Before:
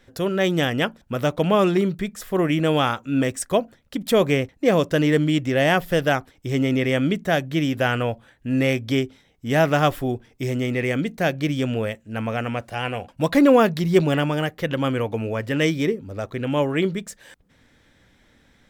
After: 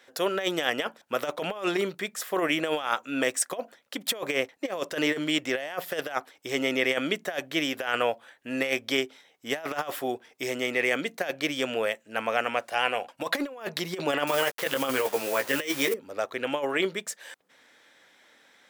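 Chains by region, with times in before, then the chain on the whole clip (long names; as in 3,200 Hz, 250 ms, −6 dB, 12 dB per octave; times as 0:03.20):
0:14.27–0:15.94: hold until the input has moved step −36 dBFS + high-shelf EQ 7,400 Hz +8.5 dB + double-tracking delay 15 ms −4 dB
whole clip: high-pass filter 540 Hz 12 dB per octave; compressor whose output falls as the input rises −26 dBFS, ratio −0.5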